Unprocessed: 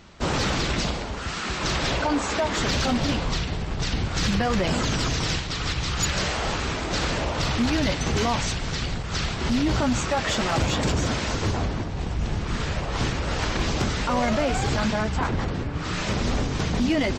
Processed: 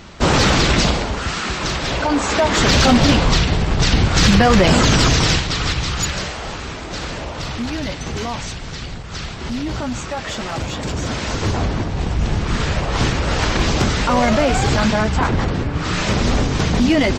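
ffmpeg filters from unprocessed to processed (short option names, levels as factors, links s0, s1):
-af "volume=25.1,afade=t=out:st=0.94:d=0.87:silence=0.398107,afade=t=in:st=1.81:d=1.06:silence=0.354813,afade=t=out:st=5.07:d=1.27:silence=0.237137,afade=t=in:st=10.83:d=1.04:silence=0.354813"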